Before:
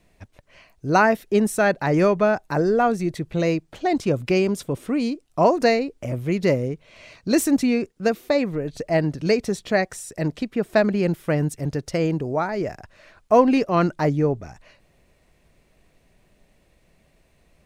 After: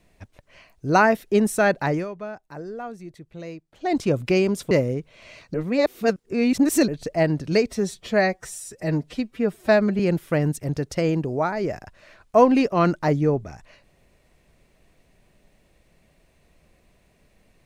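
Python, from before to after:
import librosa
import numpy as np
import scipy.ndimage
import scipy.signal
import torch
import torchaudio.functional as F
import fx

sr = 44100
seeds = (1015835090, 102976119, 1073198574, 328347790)

y = fx.edit(x, sr, fx.fade_down_up(start_s=1.85, length_s=2.1, db=-15.0, fade_s=0.2),
    fx.cut(start_s=4.71, length_s=1.74),
    fx.reverse_span(start_s=7.28, length_s=1.34),
    fx.stretch_span(start_s=9.41, length_s=1.55, factor=1.5), tone=tone)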